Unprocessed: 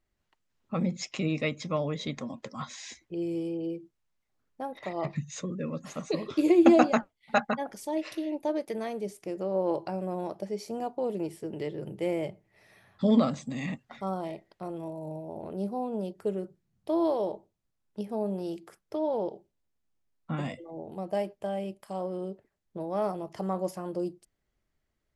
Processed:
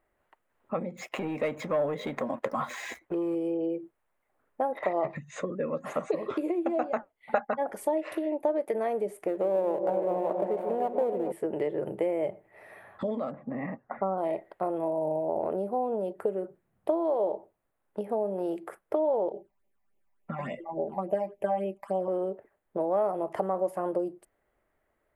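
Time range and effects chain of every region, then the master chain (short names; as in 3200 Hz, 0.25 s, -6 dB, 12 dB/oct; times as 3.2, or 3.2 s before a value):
0.97–3.35 sample leveller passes 2 + compressor 1.5:1, threshold -39 dBFS
9.28–11.32 switching dead time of 0.12 ms + high shelf 5100 Hz -11 dB + repeats that get brighter 0.141 s, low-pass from 400 Hz, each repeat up 1 oct, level -6 dB
13.31–14.18 LPF 1800 Hz 24 dB/oct + bell 200 Hz +4.5 dB 0.32 oct + mismatched tape noise reduction decoder only
19.32–22.08 comb 5.1 ms, depth 64% + phaser stages 8, 3.5 Hz, lowest notch 400–1500 Hz
whole clip: dynamic EQ 1300 Hz, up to -3 dB, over -39 dBFS, Q 0.75; compressor 10:1, threshold -35 dBFS; EQ curve 170 Hz 0 dB, 580 Hz +15 dB, 1900 Hz +10 dB, 5500 Hz -11 dB, 9300 Hz +4 dB; gain -1 dB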